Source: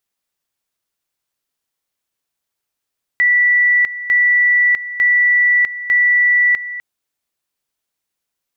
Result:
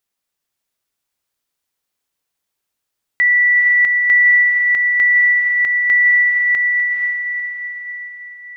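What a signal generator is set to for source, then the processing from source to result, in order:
two-level tone 1.96 kHz -9.5 dBFS, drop 14 dB, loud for 0.65 s, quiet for 0.25 s, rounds 4
on a send: echo that smears into a reverb 488 ms, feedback 46%, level -4 dB

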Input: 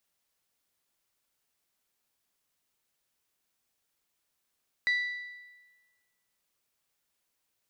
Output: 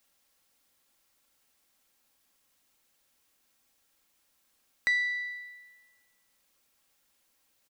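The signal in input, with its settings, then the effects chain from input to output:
metal hit bell, lowest mode 1.97 kHz, decay 1.29 s, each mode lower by 11 dB, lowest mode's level -22.5 dB
comb 3.7 ms, depth 36%; in parallel at +2.5 dB: compression, threshold -38 dBFS; on the sum: saturation -16 dBFS

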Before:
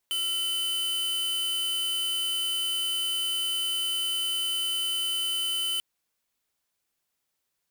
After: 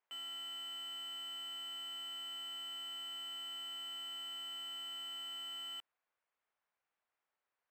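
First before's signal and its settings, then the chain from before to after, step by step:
tone square 3.03 kHz -28.5 dBFS 5.69 s
three-band isolator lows -20 dB, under 470 Hz, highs -22 dB, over 2.4 kHz; peak limiter -39 dBFS; decimation joined by straight lines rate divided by 4×

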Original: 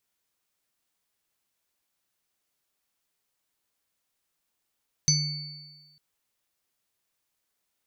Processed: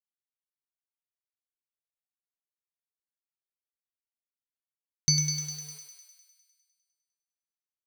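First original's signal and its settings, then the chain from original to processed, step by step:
sine partials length 0.90 s, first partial 150 Hz, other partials 2.23/4.5/6.05 kHz, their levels -19/-1.5/5.5 dB, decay 1.21 s, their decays 1.17/1.50/0.31 s, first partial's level -22 dB
word length cut 8-bit, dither none; on a send: thinning echo 101 ms, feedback 69%, high-pass 720 Hz, level -5 dB

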